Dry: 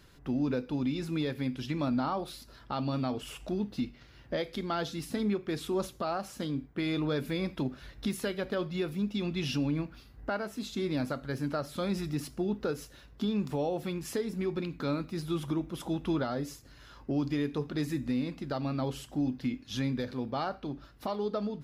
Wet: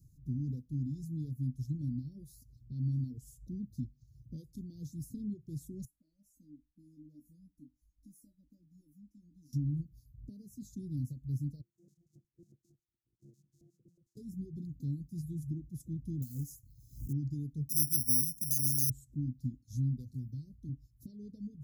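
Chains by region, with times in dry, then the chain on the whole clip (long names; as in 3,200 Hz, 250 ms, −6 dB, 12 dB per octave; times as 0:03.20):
0:05.85–0:09.53: phaser with its sweep stopped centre 600 Hz, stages 8 + tuned comb filter 300 Hz, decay 0.26 s, mix 90%
0:11.61–0:14.17: samples sorted by size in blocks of 128 samples + band-pass on a step sequencer 11 Hz 470–1,700 Hz
0:16.22–0:17.13: floating-point word with a short mantissa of 2 bits + high-shelf EQ 7,500 Hz +10 dB + background raised ahead of every attack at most 100 dB per second
0:17.69–0:18.90: bad sample-rate conversion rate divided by 8×, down filtered, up zero stuff + low-shelf EQ 100 Hz −9.5 dB
0:20.14–0:20.69: parametric band 1,100 Hz −9 dB 2.3 octaves + notch filter 670 Hz, Q 9.6 + multiband upward and downward compressor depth 70%
whole clip: Chebyshev band-stop filter 270–6,600 Hz, order 4; reverb reduction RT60 0.6 s; octave-band graphic EQ 125/250/500/1,000/4,000/8,000 Hz +11/−10/+9/−6/+8/−6 dB; level −3 dB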